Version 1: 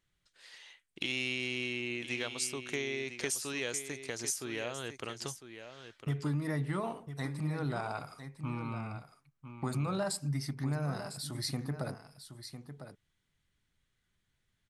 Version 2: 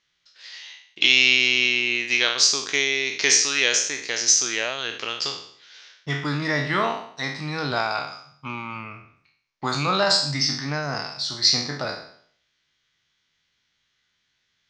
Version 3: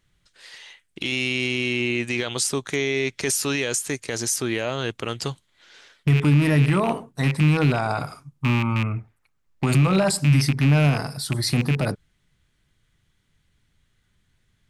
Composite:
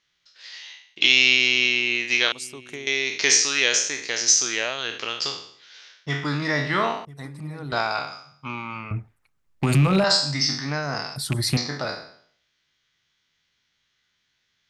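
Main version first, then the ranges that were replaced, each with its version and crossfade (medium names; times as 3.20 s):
2
2.32–2.87 s: from 1
7.05–7.72 s: from 1
8.91–10.04 s: from 3
11.16–11.57 s: from 3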